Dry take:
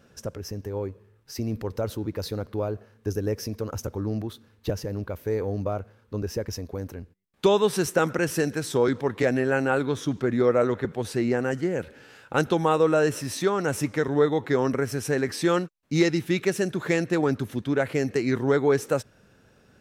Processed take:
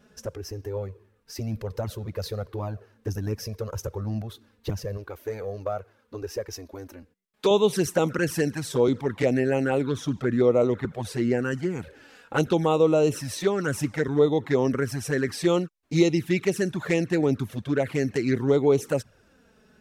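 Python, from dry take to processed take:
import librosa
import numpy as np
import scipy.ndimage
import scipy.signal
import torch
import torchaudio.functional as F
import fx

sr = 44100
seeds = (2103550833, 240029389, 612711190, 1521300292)

y = fx.low_shelf(x, sr, hz=220.0, db=-10.0, at=(4.97, 7.51))
y = fx.env_flanger(y, sr, rest_ms=4.9, full_db=-18.0)
y = y * librosa.db_to_amplitude(2.0)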